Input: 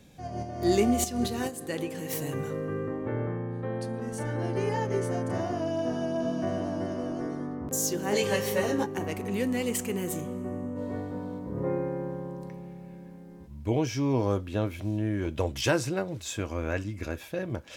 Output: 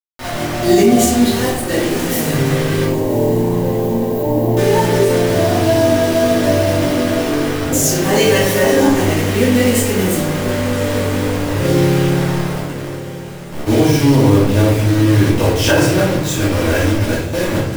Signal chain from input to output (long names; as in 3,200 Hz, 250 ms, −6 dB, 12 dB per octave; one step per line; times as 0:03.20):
bit reduction 6 bits
0:02.84–0:04.57: linear-phase brick-wall band-stop 1,100–12,000 Hz
feedback delay with all-pass diffusion 1,105 ms, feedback 56%, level −14.5 dB
convolution reverb RT60 0.75 s, pre-delay 3 ms, DRR −8.5 dB
boost into a limiter +6.5 dB
level −1 dB